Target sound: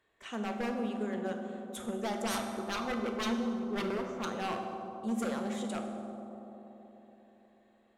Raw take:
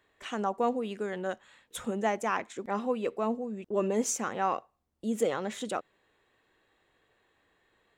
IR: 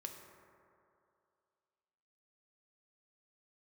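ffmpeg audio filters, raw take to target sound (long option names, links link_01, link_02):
-filter_complex "[0:a]asettb=1/sr,asplit=3[link_01][link_02][link_03];[link_01]atrim=end=2.224[link_04];[link_02]atrim=start=2.22:end=4.25,asetpts=PTS-STARTPTS,afade=type=in:duration=0.004:curve=qsin,afade=type=out:start_time=2.026:duration=0.004:curve=qsin,lowpass=frequency=1300:width_type=q:width=7.5[link_05];[link_03]atrim=start=4.246[link_06];[link_04][link_05]acrossfade=duration=0.004:curve1=hsin:curve2=qsin[link_07];[link_07][link_06]acrossfade=duration=0.004:curve1=qsin:curve2=hsin,aeval=exprs='0.0562*(abs(mod(val(0)/0.0562+3,4)-2)-1)':channel_layout=same[link_08];[1:a]atrim=start_sample=2205,asetrate=26901,aresample=44100[link_09];[link_08][link_09]afir=irnorm=-1:irlink=0,volume=-3dB"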